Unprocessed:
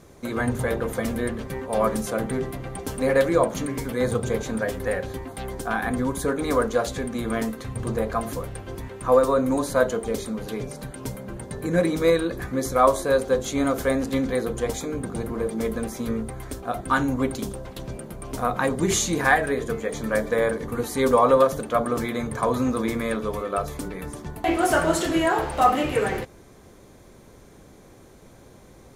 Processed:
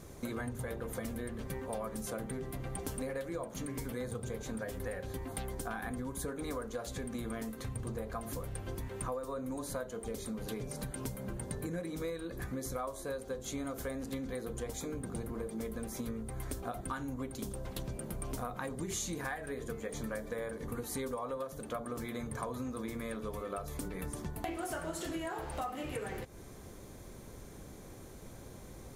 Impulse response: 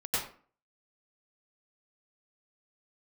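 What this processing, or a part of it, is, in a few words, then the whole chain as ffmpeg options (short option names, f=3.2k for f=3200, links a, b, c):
ASMR close-microphone chain: -af "lowshelf=f=150:g=5.5,acompressor=threshold=-33dB:ratio=10,highshelf=f=7.3k:g=7.5,volume=-3dB"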